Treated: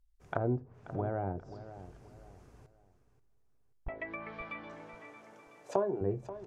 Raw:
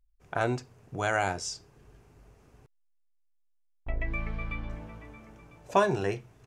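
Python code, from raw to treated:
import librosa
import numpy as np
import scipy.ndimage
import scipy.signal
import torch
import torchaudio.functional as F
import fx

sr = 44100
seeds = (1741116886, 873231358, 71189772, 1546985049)

y = fx.highpass(x, sr, hz=340.0, slope=12, at=(3.88, 6.01))
y = fx.env_lowpass_down(y, sr, base_hz=460.0, full_db=-29.0)
y = fx.peak_eq(y, sr, hz=2600.0, db=-4.0, octaves=0.55)
y = fx.echo_feedback(y, sr, ms=533, feedback_pct=31, wet_db=-14)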